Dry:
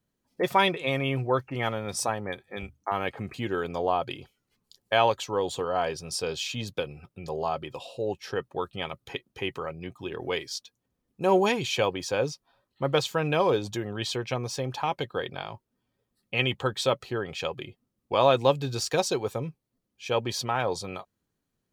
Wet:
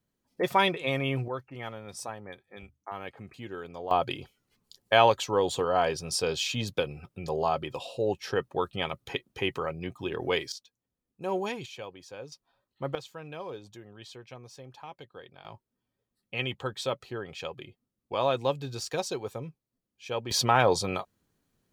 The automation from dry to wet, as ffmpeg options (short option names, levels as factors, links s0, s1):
-af "asetnsamples=n=441:p=0,asendcmd='1.28 volume volume -10dB;3.91 volume volume 2dB;10.52 volume volume -9dB;11.66 volume volume -16dB;12.32 volume volume -6dB;12.95 volume volume -16dB;15.45 volume volume -6dB;20.31 volume volume 5.5dB',volume=0.841"